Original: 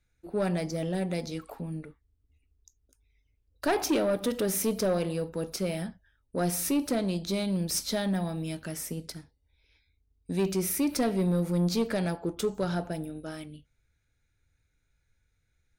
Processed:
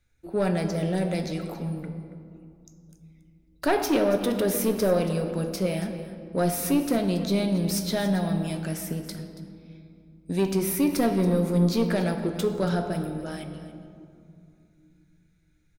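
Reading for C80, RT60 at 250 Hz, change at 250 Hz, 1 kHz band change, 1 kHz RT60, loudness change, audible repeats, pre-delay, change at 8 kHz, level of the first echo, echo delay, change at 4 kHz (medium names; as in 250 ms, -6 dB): 8.5 dB, 3.7 s, +4.5 dB, +4.5 dB, 2.5 s, +4.0 dB, 1, 5 ms, -0.5 dB, -15.5 dB, 279 ms, +1.5 dB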